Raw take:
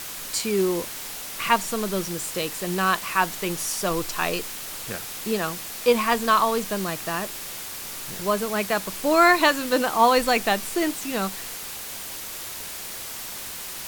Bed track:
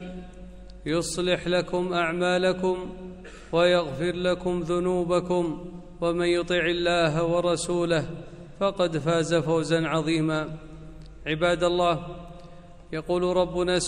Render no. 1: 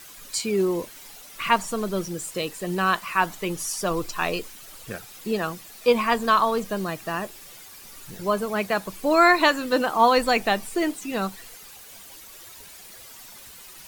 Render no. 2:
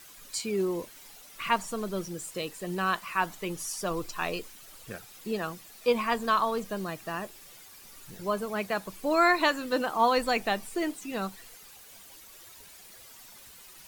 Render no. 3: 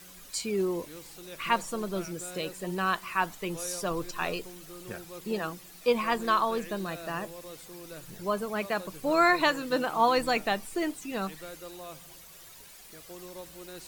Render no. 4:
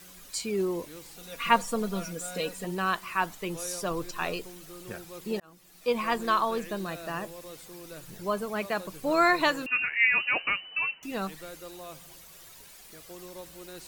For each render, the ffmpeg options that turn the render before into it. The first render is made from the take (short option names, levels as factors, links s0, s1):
-af "afftdn=nr=12:nf=-35"
-af "volume=0.501"
-filter_complex "[1:a]volume=0.0841[s0];[0:a][s0]amix=inputs=2:normalize=0"
-filter_complex "[0:a]asettb=1/sr,asplit=3[s0][s1][s2];[s0]atrim=end=1.174[s3];[s1]atrim=start=1.17:end=2.65,asetpts=PTS-STARTPTS,afade=t=in:d=0.004:c=qsin,afade=t=out:st=1.476:d=0.004:c=qsin,aecho=1:1:4.2:0.78,atrim=end_sample=65268[s4];[s2]atrim=start=2.646[s5];[s3][s4]acrossfade=d=0.004:c1=hsin:c2=qsin[s6];[s6][s5]acrossfade=d=0.004:c1=qsin:c2=hsin,asettb=1/sr,asplit=3[s7][s8][s9];[s7]atrim=end=9.664[s10];[s8]atrim=start=9.66:end=11.03,asetpts=PTS-STARTPTS,afade=t=in:d=0.004:c=qsin,afade=t=out:st=1.366:d=0.004:c=qsin,lowpass=f=2600:t=q:w=0.5098,lowpass=f=2600:t=q:w=0.6013,lowpass=f=2600:t=q:w=0.9,lowpass=f=2600:t=q:w=2.563,afreqshift=-3000[s11];[s9]atrim=start=11.026[s12];[s10][s11]acrossfade=d=0.004:c1=hsin:c2=qsin[s13];[s13][s12]acrossfade=d=0.004:c1=qsin:c2=hsin,asplit=2[s14][s15];[s14]atrim=end=5.4,asetpts=PTS-STARTPTS,afade=t=out:st=5.396:d=0.004:c=hsin[s16];[s15]atrim=start=5.4,asetpts=PTS-STARTPTS,afade=t=in:d=0.65[s17];[s16][s17]concat=n=2:v=0:a=1"